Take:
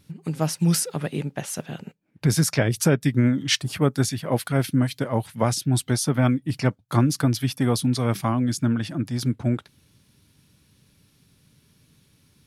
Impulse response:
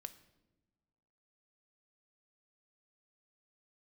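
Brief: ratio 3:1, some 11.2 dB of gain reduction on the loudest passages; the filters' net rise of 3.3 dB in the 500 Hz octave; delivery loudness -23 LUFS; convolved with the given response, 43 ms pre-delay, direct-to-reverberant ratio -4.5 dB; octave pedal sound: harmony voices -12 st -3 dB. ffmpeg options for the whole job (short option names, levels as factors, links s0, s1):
-filter_complex "[0:a]equalizer=f=500:t=o:g=4,acompressor=threshold=0.0355:ratio=3,asplit=2[s0][s1];[1:a]atrim=start_sample=2205,adelay=43[s2];[s1][s2]afir=irnorm=-1:irlink=0,volume=2.99[s3];[s0][s3]amix=inputs=2:normalize=0,asplit=2[s4][s5];[s5]asetrate=22050,aresample=44100,atempo=2,volume=0.708[s6];[s4][s6]amix=inputs=2:normalize=0,volume=1.26"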